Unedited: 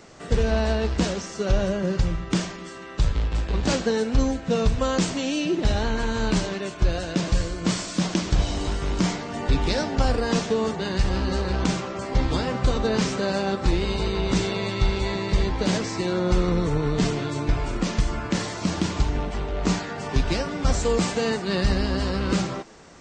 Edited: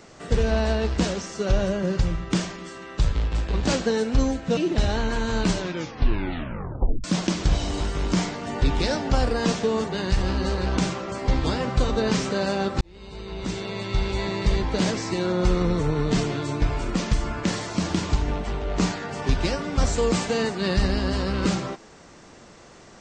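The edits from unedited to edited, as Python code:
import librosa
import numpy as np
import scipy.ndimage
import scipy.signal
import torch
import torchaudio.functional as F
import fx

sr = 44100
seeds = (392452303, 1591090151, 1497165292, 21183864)

y = fx.edit(x, sr, fx.cut(start_s=4.57, length_s=0.87),
    fx.tape_stop(start_s=6.44, length_s=1.47),
    fx.fade_in_span(start_s=13.68, length_s=1.53), tone=tone)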